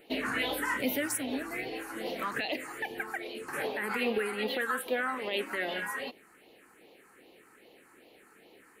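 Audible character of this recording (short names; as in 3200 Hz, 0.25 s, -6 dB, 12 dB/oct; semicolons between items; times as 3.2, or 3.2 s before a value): phasing stages 4, 2.5 Hz, lowest notch 560–1500 Hz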